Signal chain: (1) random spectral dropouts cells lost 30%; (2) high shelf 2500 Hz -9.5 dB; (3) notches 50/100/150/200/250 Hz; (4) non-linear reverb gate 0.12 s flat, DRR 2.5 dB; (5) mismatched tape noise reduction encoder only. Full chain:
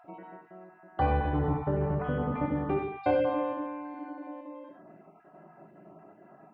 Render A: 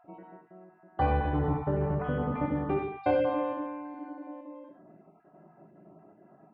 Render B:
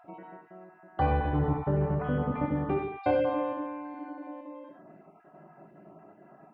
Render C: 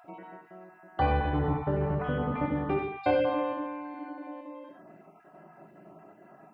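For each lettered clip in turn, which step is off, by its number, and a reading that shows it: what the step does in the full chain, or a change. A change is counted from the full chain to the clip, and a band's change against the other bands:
5, momentary loudness spread change -2 LU; 3, 125 Hz band +1.5 dB; 2, 4 kHz band +5.5 dB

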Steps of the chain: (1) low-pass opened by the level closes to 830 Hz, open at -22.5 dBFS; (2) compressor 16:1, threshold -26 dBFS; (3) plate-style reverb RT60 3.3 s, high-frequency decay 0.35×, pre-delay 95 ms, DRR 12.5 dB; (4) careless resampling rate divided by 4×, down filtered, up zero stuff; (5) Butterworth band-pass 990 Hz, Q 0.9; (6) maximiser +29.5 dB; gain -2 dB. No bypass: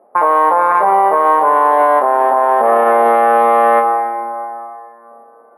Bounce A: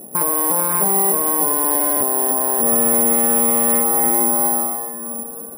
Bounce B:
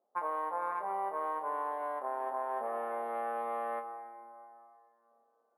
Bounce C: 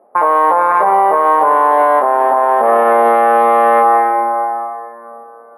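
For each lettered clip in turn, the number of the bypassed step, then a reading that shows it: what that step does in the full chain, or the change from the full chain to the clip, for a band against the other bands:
5, 250 Hz band +15.5 dB; 6, crest factor change +5.5 dB; 2, mean gain reduction 5.0 dB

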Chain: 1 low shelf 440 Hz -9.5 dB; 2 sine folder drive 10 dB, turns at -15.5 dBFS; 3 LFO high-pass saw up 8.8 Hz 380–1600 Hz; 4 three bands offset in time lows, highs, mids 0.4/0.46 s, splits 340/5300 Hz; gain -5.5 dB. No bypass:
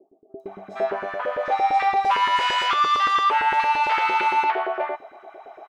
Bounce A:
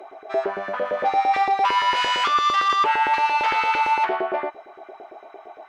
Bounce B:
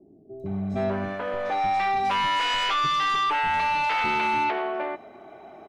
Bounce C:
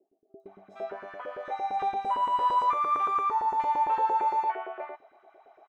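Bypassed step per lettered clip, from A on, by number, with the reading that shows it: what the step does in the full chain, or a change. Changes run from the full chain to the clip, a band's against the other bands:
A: 4, echo-to-direct 19.5 dB to none; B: 3, 250 Hz band +10.5 dB; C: 2, distortion -2 dB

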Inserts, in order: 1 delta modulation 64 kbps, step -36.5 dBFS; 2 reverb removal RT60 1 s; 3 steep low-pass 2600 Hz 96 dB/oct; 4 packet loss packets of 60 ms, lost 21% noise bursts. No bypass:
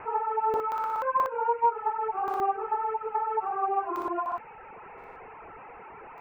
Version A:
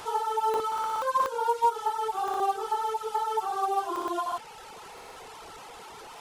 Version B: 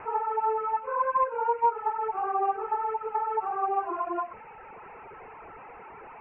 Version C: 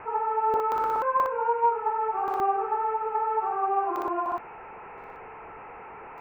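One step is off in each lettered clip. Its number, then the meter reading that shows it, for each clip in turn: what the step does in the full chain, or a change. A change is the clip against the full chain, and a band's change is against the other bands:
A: 3, momentary loudness spread change -1 LU; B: 4, 250 Hz band -1.5 dB; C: 2, loudness change +2.0 LU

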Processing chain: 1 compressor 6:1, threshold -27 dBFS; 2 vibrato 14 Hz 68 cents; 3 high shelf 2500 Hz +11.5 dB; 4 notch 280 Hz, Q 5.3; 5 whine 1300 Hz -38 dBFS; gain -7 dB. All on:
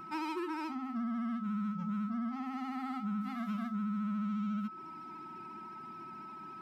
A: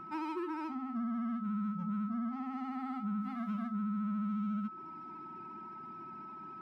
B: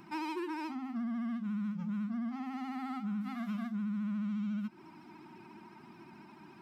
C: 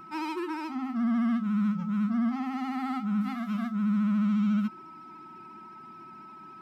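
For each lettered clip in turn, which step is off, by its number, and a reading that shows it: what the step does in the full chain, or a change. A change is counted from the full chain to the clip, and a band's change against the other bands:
3, 2 kHz band -4.0 dB; 5, 1 kHz band -3.5 dB; 1, mean gain reduction 5.0 dB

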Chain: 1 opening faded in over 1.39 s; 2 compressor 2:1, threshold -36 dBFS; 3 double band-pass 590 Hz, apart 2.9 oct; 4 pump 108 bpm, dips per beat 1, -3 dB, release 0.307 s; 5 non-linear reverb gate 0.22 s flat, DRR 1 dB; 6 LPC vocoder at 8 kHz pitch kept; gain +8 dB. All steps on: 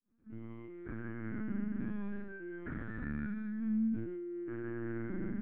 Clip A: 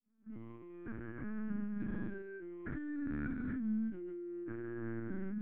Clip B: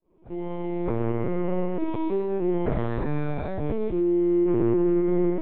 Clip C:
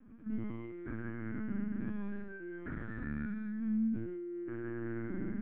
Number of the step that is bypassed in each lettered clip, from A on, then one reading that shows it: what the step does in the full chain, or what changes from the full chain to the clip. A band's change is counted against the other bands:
5, loudness change -2.0 LU; 3, 2 kHz band -13.0 dB; 1, momentary loudness spread change -4 LU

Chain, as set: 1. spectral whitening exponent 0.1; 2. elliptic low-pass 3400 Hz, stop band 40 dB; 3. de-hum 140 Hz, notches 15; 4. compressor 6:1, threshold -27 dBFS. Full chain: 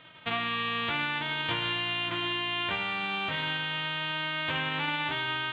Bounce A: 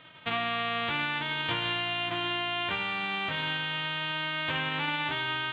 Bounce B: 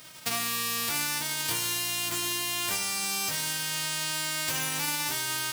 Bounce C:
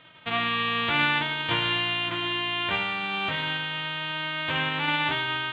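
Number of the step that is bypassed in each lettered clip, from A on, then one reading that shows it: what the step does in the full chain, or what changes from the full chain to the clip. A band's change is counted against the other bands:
3, 500 Hz band +2.0 dB; 2, loudness change +2.0 LU; 4, mean gain reduction 3.0 dB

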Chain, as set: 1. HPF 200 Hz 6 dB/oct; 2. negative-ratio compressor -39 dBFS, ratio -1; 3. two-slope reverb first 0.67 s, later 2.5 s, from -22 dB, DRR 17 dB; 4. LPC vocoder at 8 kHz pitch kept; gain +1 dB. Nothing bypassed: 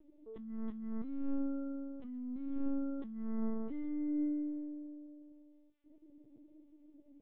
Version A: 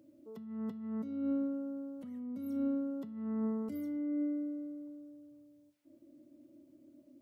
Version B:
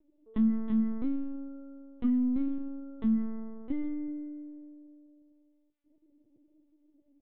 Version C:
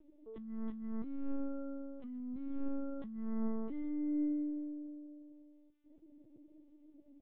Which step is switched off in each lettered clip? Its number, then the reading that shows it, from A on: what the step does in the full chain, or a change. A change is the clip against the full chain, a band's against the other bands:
4, loudness change +2.0 LU; 2, momentary loudness spread change +3 LU; 3, momentary loudness spread change +4 LU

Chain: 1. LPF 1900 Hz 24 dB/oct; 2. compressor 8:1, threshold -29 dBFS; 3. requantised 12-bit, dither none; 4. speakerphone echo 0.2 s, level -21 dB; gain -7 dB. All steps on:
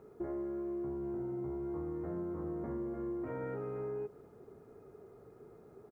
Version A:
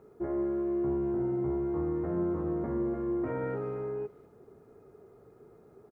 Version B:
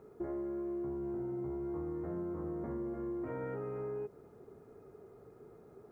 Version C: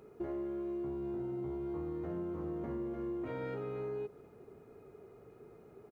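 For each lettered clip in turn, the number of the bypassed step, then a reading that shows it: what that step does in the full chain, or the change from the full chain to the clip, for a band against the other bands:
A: 2, mean gain reduction 4.5 dB; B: 4, echo-to-direct -26.0 dB to none; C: 1, 2 kHz band +2.5 dB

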